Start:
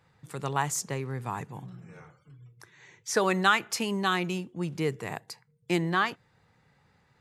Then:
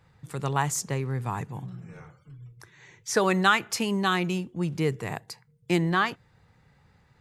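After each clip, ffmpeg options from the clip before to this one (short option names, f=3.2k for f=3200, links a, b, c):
-af "lowshelf=f=94:g=12,volume=1.5dB"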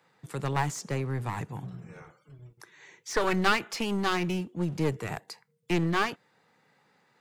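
-filter_complex "[0:a]acrossover=split=200|770|6600[a][b][c][d];[a]aeval=exprs='sgn(val(0))*max(abs(val(0))-0.00266,0)':c=same[e];[e][b][c][d]amix=inputs=4:normalize=0,acrossover=split=5200[f][g];[g]acompressor=threshold=-43dB:ratio=4:attack=1:release=60[h];[f][h]amix=inputs=2:normalize=0,aeval=exprs='clip(val(0),-1,0.0266)':c=same"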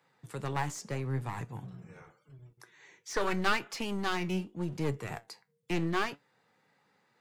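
-af "flanger=delay=6.9:depth=4:regen=72:speed=0.81:shape=triangular"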